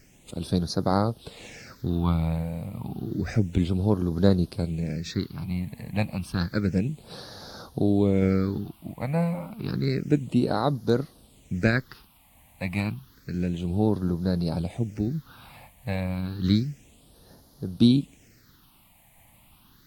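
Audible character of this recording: tremolo saw down 0.73 Hz, depth 30%; a quantiser's noise floor 10-bit, dither triangular; phasing stages 6, 0.3 Hz, lowest notch 370–2400 Hz; AAC

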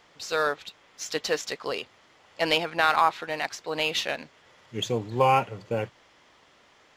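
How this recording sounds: noise floor -59 dBFS; spectral tilt -3.5 dB/octave

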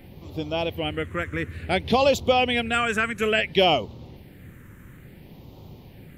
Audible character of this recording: phasing stages 4, 0.58 Hz, lowest notch 750–1600 Hz

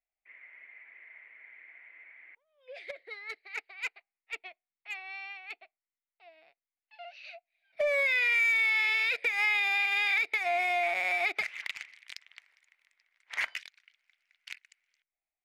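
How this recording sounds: noise floor -95 dBFS; spectral tilt +2.0 dB/octave

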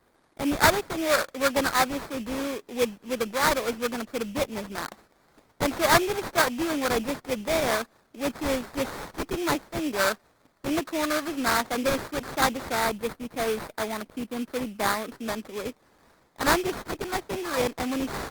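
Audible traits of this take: aliases and images of a low sample rate 2.9 kHz, jitter 20%; Opus

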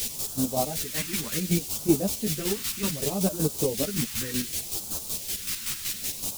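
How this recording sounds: a quantiser's noise floor 6-bit, dither triangular; phasing stages 2, 0.66 Hz, lowest notch 600–1900 Hz; chopped level 5.3 Hz, depth 60%, duty 35%; a shimmering, thickened sound

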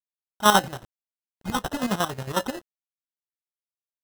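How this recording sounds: phasing stages 2, 0.54 Hz, lowest notch 510–2600 Hz; a quantiser's noise floor 8-bit, dither none; chopped level 11 Hz, depth 65%, duty 50%; aliases and images of a low sample rate 2.3 kHz, jitter 0%

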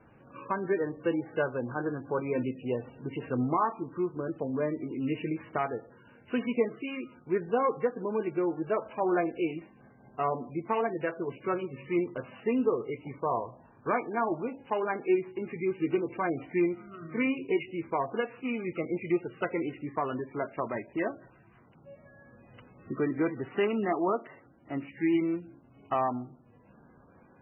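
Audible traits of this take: a buzz of ramps at a fixed pitch in blocks of 8 samples; MP3

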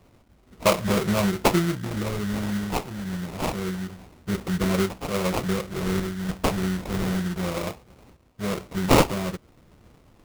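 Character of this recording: phasing stages 4, 0.27 Hz, lowest notch 570–4200 Hz; aliases and images of a low sample rate 1.7 kHz, jitter 20%; random-step tremolo

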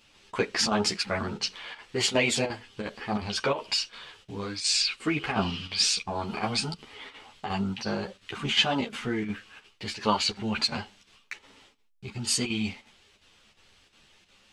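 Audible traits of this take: chopped level 2.8 Hz, depth 60%, duty 85%; a shimmering, thickened sound

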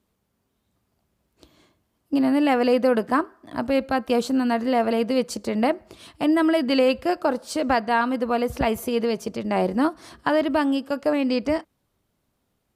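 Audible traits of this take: noise floor -74 dBFS; spectral tilt -3.5 dB/octave

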